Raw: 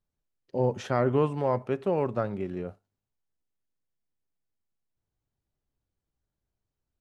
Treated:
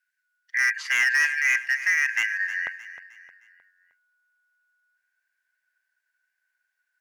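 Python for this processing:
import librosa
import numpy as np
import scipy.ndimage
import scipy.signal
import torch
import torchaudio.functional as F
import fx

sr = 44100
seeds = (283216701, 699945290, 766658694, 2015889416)

y = fx.band_shuffle(x, sr, order='2143')
y = fx.highpass(y, sr, hz=fx.steps((0.0, 1500.0), (2.67, 620.0)), slope=24)
y = np.clip(y, -10.0 ** (-23.0 / 20.0), 10.0 ** (-23.0 / 20.0))
y = fx.echo_feedback(y, sr, ms=310, feedback_pct=42, wet_db=-14.0)
y = F.gain(torch.from_numpy(y), 6.0).numpy()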